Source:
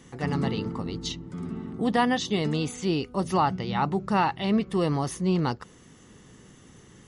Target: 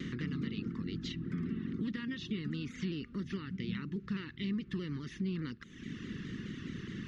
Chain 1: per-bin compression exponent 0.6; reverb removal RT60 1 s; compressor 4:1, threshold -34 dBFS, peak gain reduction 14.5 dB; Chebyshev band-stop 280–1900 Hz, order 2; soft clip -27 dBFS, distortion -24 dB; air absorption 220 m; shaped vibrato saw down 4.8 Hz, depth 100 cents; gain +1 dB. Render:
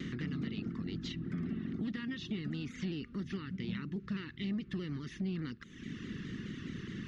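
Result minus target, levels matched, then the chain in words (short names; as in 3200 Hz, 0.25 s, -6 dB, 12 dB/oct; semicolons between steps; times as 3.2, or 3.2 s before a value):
soft clip: distortion +17 dB
per-bin compression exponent 0.6; reverb removal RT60 1 s; compressor 4:1, threshold -34 dBFS, peak gain reduction 14.5 dB; Chebyshev band-stop 280–1900 Hz, order 2; soft clip -17.5 dBFS, distortion -42 dB; air absorption 220 m; shaped vibrato saw down 4.8 Hz, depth 100 cents; gain +1 dB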